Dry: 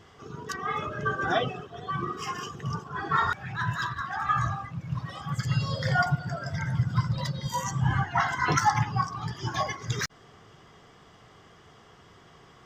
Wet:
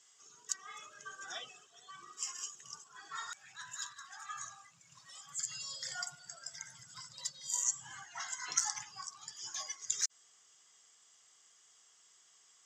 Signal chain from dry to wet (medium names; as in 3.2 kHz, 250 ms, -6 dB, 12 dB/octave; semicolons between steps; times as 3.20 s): band-pass filter 7.3 kHz, Q 6.1; trim +12 dB